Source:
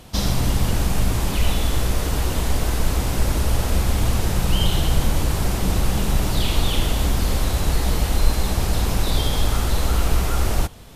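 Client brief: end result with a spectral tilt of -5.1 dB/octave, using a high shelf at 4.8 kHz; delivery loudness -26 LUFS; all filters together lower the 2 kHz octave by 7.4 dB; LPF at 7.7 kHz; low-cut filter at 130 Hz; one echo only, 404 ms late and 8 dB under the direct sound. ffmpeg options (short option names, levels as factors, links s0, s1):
-af "highpass=130,lowpass=7700,equalizer=f=2000:t=o:g=-9,highshelf=f=4800:g=-5,aecho=1:1:404:0.398,volume=1.19"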